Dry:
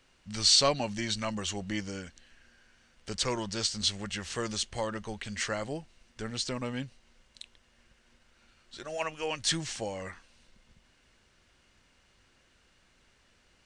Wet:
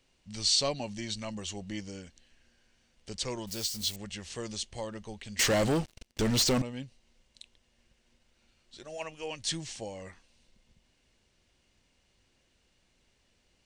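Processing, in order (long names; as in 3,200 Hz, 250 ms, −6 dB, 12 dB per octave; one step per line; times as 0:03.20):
0:03.47–0:03.96: spike at every zero crossing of −30.5 dBFS
parametric band 1,400 Hz −8.5 dB 0.93 octaves
0:05.39–0:06.62: leveller curve on the samples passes 5
level −3.5 dB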